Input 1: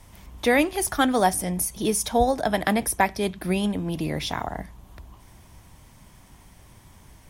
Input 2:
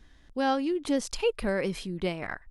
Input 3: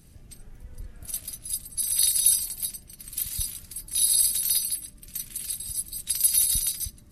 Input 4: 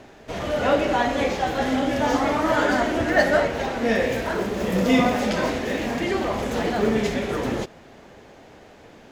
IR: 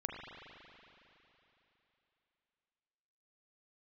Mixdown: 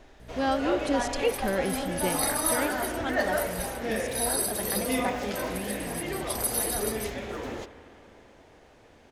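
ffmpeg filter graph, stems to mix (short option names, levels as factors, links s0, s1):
-filter_complex "[0:a]lowpass=7400,adelay=2050,volume=0.224[s0];[1:a]volume=0.944[s1];[2:a]aeval=exprs='val(0)+0.0112*(sin(2*PI*60*n/s)+sin(2*PI*2*60*n/s)/2+sin(2*PI*3*60*n/s)/3+sin(2*PI*4*60*n/s)/4+sin(2*PI*5*60*n/s)/5)':c=same,adelay=200,volume=0.398[s2];[3:a]equalizer=f=170:t=o:w=0.86:g=-9,volume=0.282,asplit=2[s3][s4];[s4]volume=0.422[s5];[4:a]atrim=start_sample=2205[s6];[s5][s6]afir=irnorm=-1:irlink=0[s7];[s0][s1][s2][s3][s7]amix=inputs=5:normalize=0"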